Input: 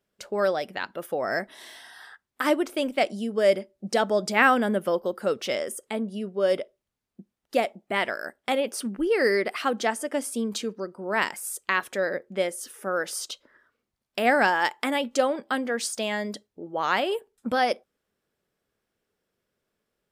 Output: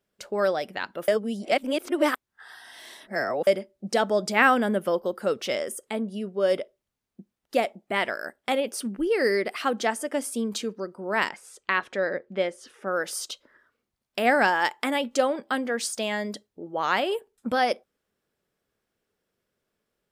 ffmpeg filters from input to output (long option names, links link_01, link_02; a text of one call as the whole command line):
ffmpeg -i in.wav -filter_complex "[0:a]asettb=1/sr,asplit=3[link_01][link_02][link_03];[link_01]atrim=end=8.604[link_04];[link_02]atrim=start=8.6:end=9.61,asetpts=PTS-STARTPTS,afade=type=in:duration=0.004:curve=qsin,afade=type=out:start_time=1.006:duration=0.004:curve=qsin,equalizer=frequency=1200:width_type=o:width=1.8:gain=-3[link_05];[link_03]atrim=start=9.606[link_06];[link_04][link_05]acrossfade=duration=0.004:curve1=hsin:curve2=qsin[link_07];[link_07][link_06]acrossfade=duration=0.004:curve1=qsin:curve2=hsin,asettb=1/sr,asplit=3[link_08][link_09][link_10];[link_08]atrim=end=11.294[link_11];[link_09]atrim=start=11.29:end=12.88,asetpts=PTS-STARTPTS,afade=type=in:duration=0.004:curve=qsin,afade=type=out:start_time=1.586:duration=0.004:curve=qsin,lowpass=4300[link_12];[link_10]atrim=start=12.876[link_13];[link_11][link_12]acrossfade=duration=0.004:curve1=hsin:curve2=qsin[link_14];[link_14][link_13]acrossfade=duration=0.004:curve1=qsin:curve2=hsin,asplit=3[link_15][link_16][link_17];[link_15]atrim=end=1.082[link_18];[link_16]atrim=start=1.078:end=3.472,asetpts=PTS-STARTPTS,areverse[link_19];[link_17]atrim=start=3.468[link_20];[link_18][link_19]acrossfade=duration=0.004:curve1=hsin:curve2=hsin[link_21];[link_21][link_20]acrossfade=duration=0.004:curve1=hsin:curve2=hsin" out.wav